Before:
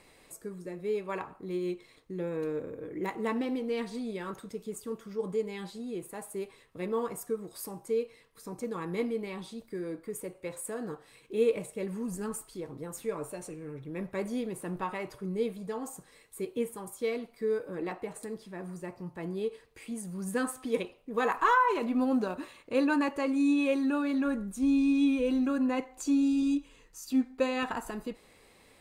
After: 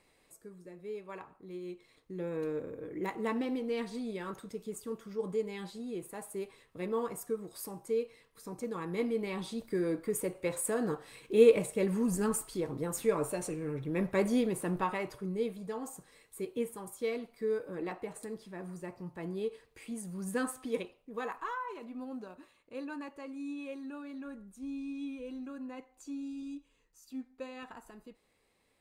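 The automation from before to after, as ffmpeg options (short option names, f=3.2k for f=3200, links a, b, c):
-af "volume=5dB,afade=t=in:st=1.67:d=0.7:silence=0.421697,afade=t=in:st=8.96:d=0.74:silence=0.446684,afade=t=out:st=14.34:d=1.04:silence=0.421697,afade=t=out:st=20.51:d=0.99:silence=0.251189"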